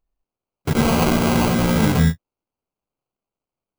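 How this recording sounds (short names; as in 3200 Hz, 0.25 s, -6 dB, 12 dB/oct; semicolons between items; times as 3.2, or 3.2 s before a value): phasing stages 2, 0.63 Hz, lowest notch 600–1200 Hz; aliases and images of a low sample rate 1800 Hz, jitter 0%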